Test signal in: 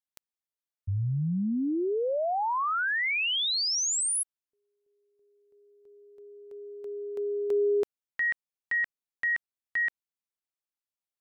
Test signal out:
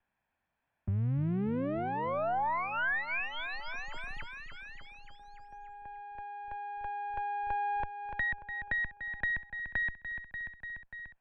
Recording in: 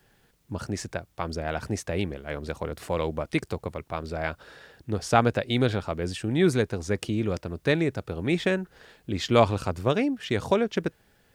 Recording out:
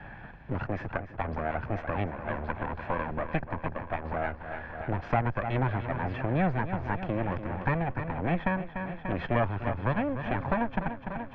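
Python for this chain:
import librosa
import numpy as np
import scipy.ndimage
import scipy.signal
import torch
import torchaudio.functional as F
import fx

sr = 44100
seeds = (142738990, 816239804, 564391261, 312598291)

y = fx.lower_of_two(x, sr, delay_ms=1.2)
y = scipy.signal.sosfilt(scipy.signal.butter(4, 2200.0, 'lowpass', fs=sr, output='sos'), y)
y = fx.echo_feedback(y, sr, ms=293, feedback_pct=54, wet_db=-12.0)
y = fx.band_squash(y, sr, depth_pct=70)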